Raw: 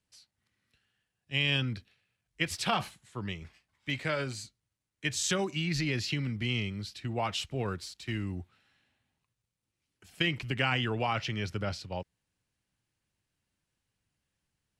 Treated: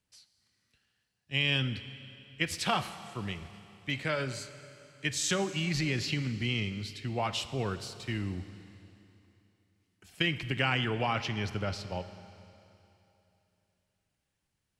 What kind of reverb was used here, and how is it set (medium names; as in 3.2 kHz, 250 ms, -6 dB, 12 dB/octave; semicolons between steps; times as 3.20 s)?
Schroeder reverb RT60 3 s, combs from 30 ms, DRR 12 dB